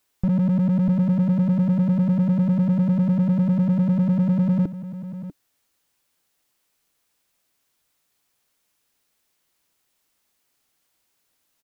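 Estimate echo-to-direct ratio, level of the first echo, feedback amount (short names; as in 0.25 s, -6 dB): -13.5 dB, -13.5 dB, no steady repeat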